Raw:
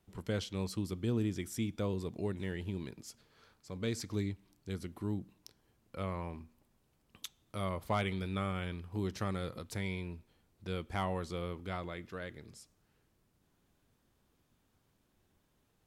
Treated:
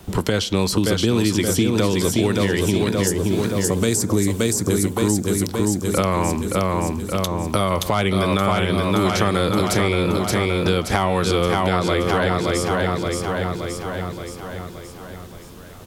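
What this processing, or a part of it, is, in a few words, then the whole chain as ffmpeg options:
mastering chain: -filter_complex "[0:a]asettb=1/sr,asplit=3[link_01][link_02][link_03];[link_01]atrim=end=3.074[link_04];[link_02]atrim=start=3.07:end=4.93,asetpts=PTS-STARTPTS,afade=type=in:duration=0.004:curve=qsin,afade=type=out:start_time=1.856:duration=0.004:curve=qsin,highshelf=frequency=5800:width_type=q:width=1.5:gain=11.5[link_05];[link_03]atrim=start=4.926[link_06];[link_04][link_05]acrossfade=duration=0.004:curve1=hsin:curve2=qsin[link_07];[link_07][link_06]acrossfade=duration=0.004:curve1=qsin:curve2=hsin,equalizer=frequency=2100:width_type=o:width=0.77:gain=-3.5,aecho=1:1:573|1146|1719|2292|2865|3438|4011:0.531|0.281|0.149|0.079|0.0419|0.0222|0.0118,acrossover=split=210|1300[link_08][link_09][link_10];[link_08]acompressor=threshold=-52dB:ratio=4[link_11];[link_09]acompressor=threshold=-45dB:ratio=4[link_12];[link_10]acompressor=threshold=-50dB:ratio=4[link_13];[link_11][link_12][link_13]amix=inputs=3:normalize=0,acompressor=threshold=-53dB:ratio=1.5,alimiter=level_in=36dB:limit=-1dB:release=50:level=0:latency=1,volume=-5.5dB"

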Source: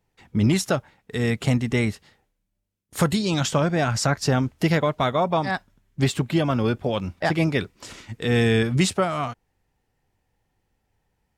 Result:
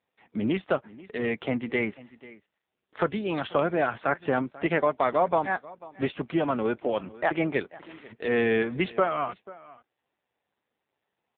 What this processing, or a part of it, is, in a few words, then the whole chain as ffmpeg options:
satellite phone: -af "highpass=310,lowpass=3000,aecho=1:1:489:0.1" -ar 8000 -c:a libopencore_amrnb -b:a 5900

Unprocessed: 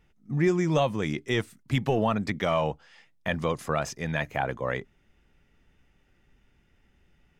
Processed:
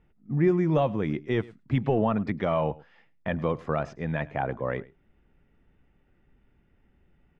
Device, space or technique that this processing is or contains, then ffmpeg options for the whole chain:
phone in a pocket: -af "lowpass=3700,equalizer=frequency=270:width_type=o:width=1.9:gain=2,highshelf=frequency=2400:gain=-11.5,aecho=1:1:105:0.0841"

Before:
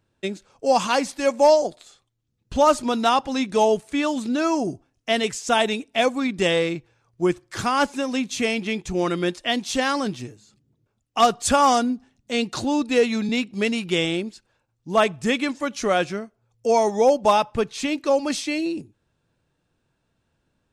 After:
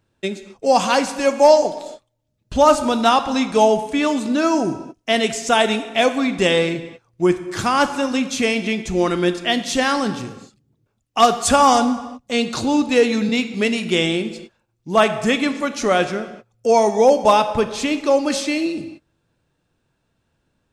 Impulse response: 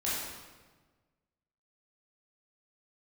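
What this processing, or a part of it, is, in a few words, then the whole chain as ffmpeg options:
keyed gated reverb: -filter_complex "[0:a]asplit=3[link_01][link_02][link_03];[1:a]atrim=start_sample=2205[link_04];[link_02][link_04]afir=irnorm=-1:irlink=0[link_05];[link_03]apad=whole_len=914134[link_06];[link_05][link_06]sidechaingate=range=-33dB:threshold=-51dB:ratio=16:detection=peak,volume=-15dB[link_07];[link_01][link_07]amix=inputs=2:normalize=0,volume=2.5dB"

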